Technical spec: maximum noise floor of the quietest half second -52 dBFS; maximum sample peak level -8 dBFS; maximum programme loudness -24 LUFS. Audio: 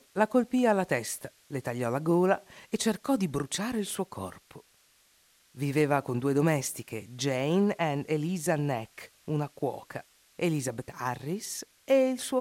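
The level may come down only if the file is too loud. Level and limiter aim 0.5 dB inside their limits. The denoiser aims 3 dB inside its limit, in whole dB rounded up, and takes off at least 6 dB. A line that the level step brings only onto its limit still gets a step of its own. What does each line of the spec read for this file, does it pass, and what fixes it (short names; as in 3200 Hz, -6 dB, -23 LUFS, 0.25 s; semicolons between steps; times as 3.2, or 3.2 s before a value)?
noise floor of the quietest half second -65 dBFS: OK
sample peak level -11.5 dBFS: OK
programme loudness -29.5 LUFS: OK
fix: none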